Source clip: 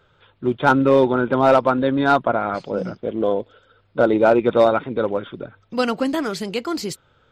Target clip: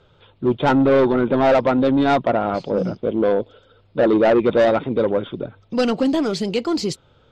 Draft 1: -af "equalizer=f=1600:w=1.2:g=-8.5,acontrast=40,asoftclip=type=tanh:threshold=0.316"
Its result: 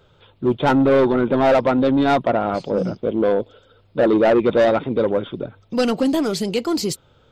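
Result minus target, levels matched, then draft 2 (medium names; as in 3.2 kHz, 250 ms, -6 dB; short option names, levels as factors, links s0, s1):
8 kHz band +4.5 dB
-af "lowpass=6000,equalizer=f=1600:w=1.2:g=-8.5,acontrast=40,asoftclip=type=tanh:threshold=0.316"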